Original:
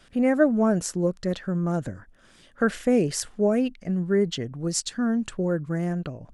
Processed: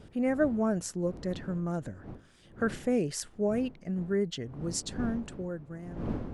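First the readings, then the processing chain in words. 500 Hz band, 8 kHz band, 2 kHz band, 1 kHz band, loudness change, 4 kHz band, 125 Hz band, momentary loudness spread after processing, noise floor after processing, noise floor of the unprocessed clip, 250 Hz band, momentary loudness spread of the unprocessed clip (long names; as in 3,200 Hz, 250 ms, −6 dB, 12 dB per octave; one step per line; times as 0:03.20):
−7.0 dB, −7.0 dB, −7.0 dB, −7.0 dB, −7.0 dB, −7.0 dB, −7.0 dB, 12 LU, −57 dBFS, −56 dBFS, −7.0 dB, 9 LU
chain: fade-out on the ending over 1.44 s
wind on the microphone 280 Hz −36 dBFS
level −7 dB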